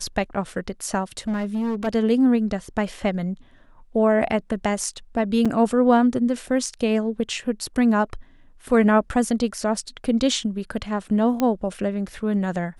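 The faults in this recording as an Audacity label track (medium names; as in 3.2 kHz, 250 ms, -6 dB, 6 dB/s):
1.190000	1.880000	clipped -21 dBFS
5.450000	5.460000	dropout 5.3 ms
11.400000	11.400000	pop -10 dBFS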